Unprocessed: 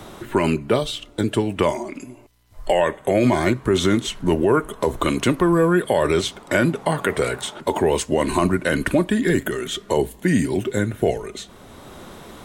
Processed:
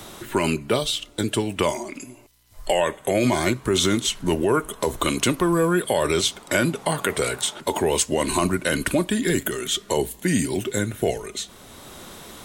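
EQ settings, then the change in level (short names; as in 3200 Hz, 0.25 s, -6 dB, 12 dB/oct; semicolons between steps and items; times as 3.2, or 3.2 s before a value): high shelf 2600 Hz +11 dB; dynamic EQ 1800 Hz, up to -4 dB, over -35 dBFS, Q 4.4; -3.5 dB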